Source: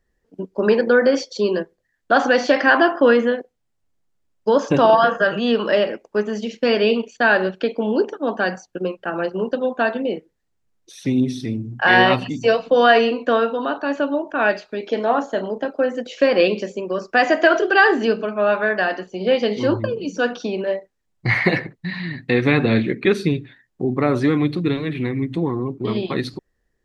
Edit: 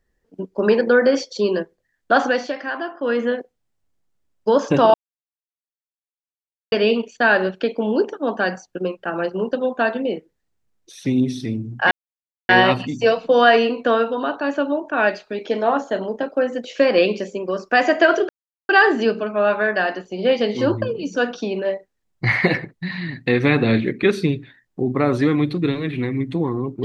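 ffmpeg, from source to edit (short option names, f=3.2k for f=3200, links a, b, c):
-filter_complex "[0:a]asplit=7[a][b][c][d][e][f][g];[a]atrim=end=2.55,asetpts=PTS-STARTPTS,afade=t=out:st=2.16:d=0.39:silence=0.237137[h];[b]atrim=start=2.55:end=3,asetpts=PTS-STARTPTS,volume=-12.5dB[i];[c]atrim=start=3:end=4.94,asetpts=PTS-STARTPTS,afade=t=in:d=0.39:silence=0.237137,afade=t=out:st=1.936:d=0.004:c=hsin[j];[d]atrim=start=4.94:end=6.72,asetpts=PTS-STARTPTS,volume=0[k];[e]atrim=start=6.72:end=11.91,asetpts=PTS-STARTPTS,afade=t=in:d=0.004:c=hsin,afade=t=out:st=5.186:d=0.004:c=hsin,apad=pad_dur=0.58[l];[f]atrim=start=11.91:end=17.71,asetpts=PTS-STARTPTS,afade=t=in:d=0.004:c=hsin,afade=t=out:st=5.796:d=0.004:c=hsin,apad=pad_dur=0.4[m];[g]atrim=start=17.71,asetpts=PTS-STARTPTS,afade=t=in:d=0.004:c=hsin[n];[h][i][j][k][l][m][n]concat=n=7:v=0:a=1"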